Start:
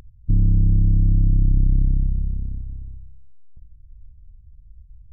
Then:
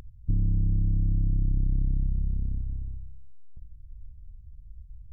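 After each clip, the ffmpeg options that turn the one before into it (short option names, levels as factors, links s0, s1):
-af "acompressor=threshold=0.0631:ratio=3"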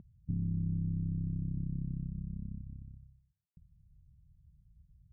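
-af "bandpass=f=180:t=q:w=2.1:csg=0"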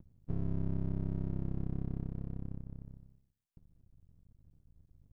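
-af "aeval=exprs='max(val(0),0)':c=same,volume=1.33"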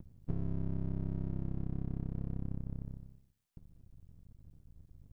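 -af "acompressor=threshold=0.0158:ratio=6,volume=2"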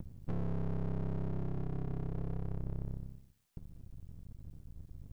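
-af "asoftclip=type=tanh:threshold=0.0168,volume=2.37"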